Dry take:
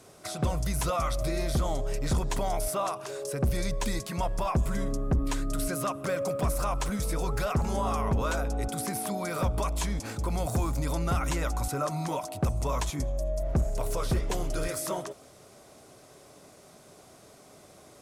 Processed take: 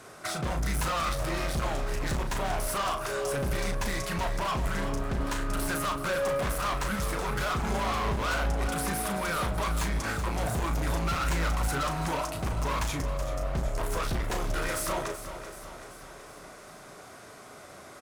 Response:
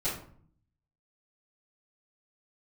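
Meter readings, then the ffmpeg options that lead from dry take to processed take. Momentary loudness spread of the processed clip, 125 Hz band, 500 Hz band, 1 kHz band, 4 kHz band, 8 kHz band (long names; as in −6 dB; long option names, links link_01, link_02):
17 LU, −2.0 dB, −0.5 dB, +2.0 dB, +4.0 dB, 0.0 dB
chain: -filter_complex "[0:a]equalizer=frequency=1500:width_type=o:width=1.4:gain=10.5,volume=30dB,asoftclip=hard,volume=-30dB,asplit=2[link_01][link_02];[link_02]adelay=36,volume=-7.5dB[link_03];[link_01][link_03]amix=inputs=2:normalize=0,aecho=1:1:381|762|1143|1524|1905|2286:0.266|0.152|0.0864|0.0493|0.0281|0.016,volume=1.5dB"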